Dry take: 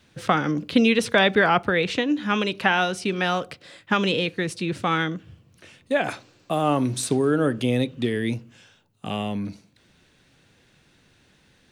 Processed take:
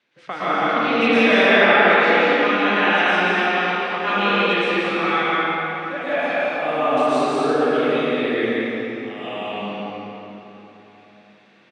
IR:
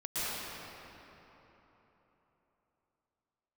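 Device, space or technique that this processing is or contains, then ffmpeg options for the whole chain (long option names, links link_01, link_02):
station announcement: -filter_complex "[0:a]highpass=330,lowpass=4000,equalizer=frequency=2200:width_type=o:width=0.4:gain=5,aecho=1:1:49.56|174.9|230.3|288.6:0.251|0.708|0.562|0.316[link_01];[1:a]atrim=start_sample=2205[link_02];[link_01][link_02]afir=irnorm=-1:irlink=0,volume=-4dB"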